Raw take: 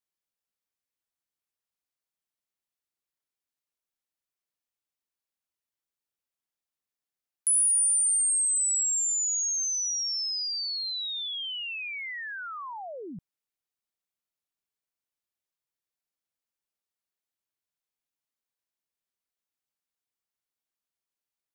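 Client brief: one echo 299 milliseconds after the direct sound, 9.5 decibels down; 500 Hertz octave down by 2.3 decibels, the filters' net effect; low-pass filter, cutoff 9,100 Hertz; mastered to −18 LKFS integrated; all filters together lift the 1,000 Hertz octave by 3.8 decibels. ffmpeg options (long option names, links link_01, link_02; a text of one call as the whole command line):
ffmpeg -i in.wav -af "lowpass=9100,equalizer=frequency=500:width_type=o:gain=-5,equalizer=frequency=1000:width_type=o:gain=6,aecho=1:1:299:0.335,volume=8.5dB" out.wav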